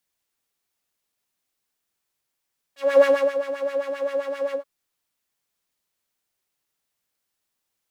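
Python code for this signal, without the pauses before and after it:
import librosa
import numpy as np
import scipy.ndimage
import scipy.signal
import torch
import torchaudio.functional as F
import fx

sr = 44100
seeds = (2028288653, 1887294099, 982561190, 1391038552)

y = fx.sub_patch_wobble(sr, seeds[0], note=73, wave='triangle', wave2='saw', interval_st=0, level2_db=-9.0, sub_db=-15.0, noise_db=-12.5, kind='bandpass', cutoff_hz=540.0, q=1.8, env_oct=2.0, env_decay_s=0.12, env_sustain_pct=40, attack_ms=272.0, decay_s=0.3, sustain_db=-12.5, release_s=0.1, note_s=1.78, lfo_hz=7.6, wobble_oct=1.1)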